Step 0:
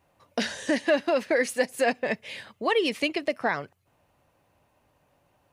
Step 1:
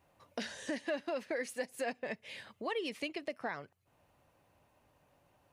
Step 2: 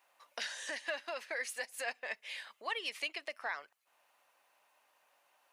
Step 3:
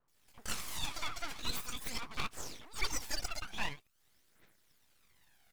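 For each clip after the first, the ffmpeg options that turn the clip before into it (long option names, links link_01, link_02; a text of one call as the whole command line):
ffmpeg -i in.wav -af "acompressor=threshold=-49dB:ratio=1.5,volume=-3dB" out.wav
ffmpeg -i in.wav -af "highpass=990,volume=4dB" out.wav
ffmpeg -i in.wav -filter_complex "[0:a]acrossover=split=500|2000[link_01][link_02][link_03];[link_03]adelay=80[link_04];[link_02]adelay=140[link_05];[link_01][link_05][link_04]amix=inputs=3:normalize=0,aphaser=in_gain=1:out_gain=1:delay=1.5:decay=0.76:speed=0.45:type=triangular,aeval=exprs='abs(val(0))':channel_layout=same,volume=3dB" out.wav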